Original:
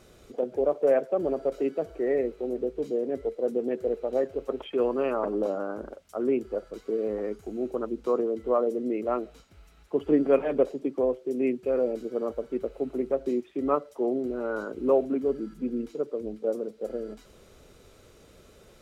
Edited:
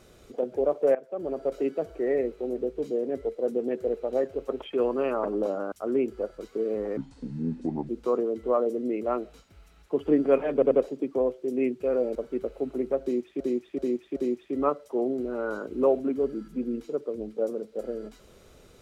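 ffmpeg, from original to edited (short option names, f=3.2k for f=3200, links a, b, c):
-filter_complex "[0:a]asplit=11[a][b][c][d][e][f][g][h][i][j][k];[a]atrim=end=0.95,asetpts=PTS-STARTPTS,afade=t=out:st=0.946:d=0.004:c=hsin:silence=0.125893[l];[b]atrim=start=0.95:end=5.722,asetpts=PTS-STARTPTS,afade=t=in:d=0.58:silence=0.125893[m];[c]atrim=start=6.048:end=7.304[n];[d]atrim=start=7.3:end=7.9,asetpts=PTS-STARTPTS,asetrate=28665,aresample=44100[o];[e]atrim=start=7.896:end=10.632[p];[f]atrim=start=10.538:end=10.632[q];[g]atrim=start=10.538:end=11.982[r];[h]atrim=start=12.348:end=13.602[s];[i]atrim=start=13.218:end=13.602[t];[j]atrim=start=13.218:end=13.602[u];[k]atrim=start=13.218[v];[l][m]concat=n=2:v=0:a=1[w];[w][n]acrossfade=d=0.004:c1=hsin:c2=hsin[x];[x][o]acrossfade=d=0.004:c1=hsin:c2=hsin[y];[y][p]acrossfade=d=0.004:c1=hsin:c2=hsin[z];[z][q]acrossfade=d=0.004:c1=hsin:c2=hsin[aa];[aa][r]acrossfade=d=0.004:c1=hsin:c2=hsin[ab];[ab][s]acrossfade=d=0.004:c1=hsin:c2=hsin[ac];[ac][t]acrossfade=d=0.004:c1=hsin:c2=hsin[ad];[ad][u]acrossfade=d=0.004:c1=hsin:c2=hsin[ae];[ae][v]acrossfade=d=0.004:c1=hsin:c2=hsin"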